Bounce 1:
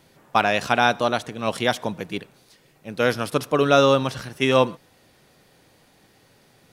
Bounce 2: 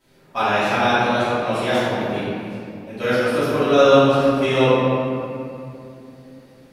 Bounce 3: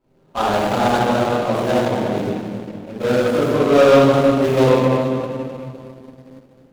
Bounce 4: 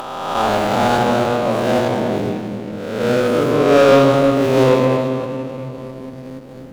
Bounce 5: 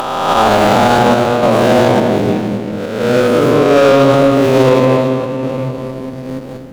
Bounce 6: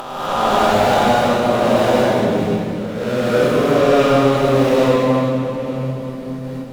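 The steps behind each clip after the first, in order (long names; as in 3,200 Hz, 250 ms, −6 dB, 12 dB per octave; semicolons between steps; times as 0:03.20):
convolution reverb RT60 2.8 s, pre-delay 3 ms, DRR −17.5 dB; level −15 dB
running median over 25 samples; leveller curve on the samples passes 1
peak hold with a rise ahead of every peak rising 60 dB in 1.01 s; upward compression, threshold −20 dBFS; level −1 dB
sample-and-hold tremolo; boost into a limiter +11.5 dB; level −1 dB
reverb whose tail is shaped and stops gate 280 ms rising, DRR −5.5 dB; level −10.5 dB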